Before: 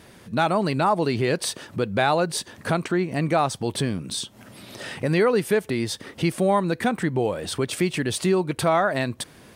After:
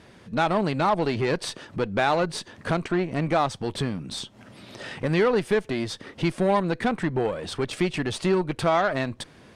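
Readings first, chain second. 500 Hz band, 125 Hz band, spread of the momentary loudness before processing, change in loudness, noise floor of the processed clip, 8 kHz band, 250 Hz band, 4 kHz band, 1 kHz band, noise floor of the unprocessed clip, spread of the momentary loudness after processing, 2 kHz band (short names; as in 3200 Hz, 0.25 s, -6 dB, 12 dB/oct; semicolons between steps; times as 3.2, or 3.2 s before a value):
-1.5 dB, -2.0 dB, 9 LU, -2.0 dB, -52 dBFS, -8.0 dB, -1.5 dB, -2.5 dB, -1.5 dB, -50 dBFS, 11 LU, -1.5 dB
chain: added harmonics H 8 -23 dB, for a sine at -7.5 dBFS; air absorption 65 m; gain -1.5 dB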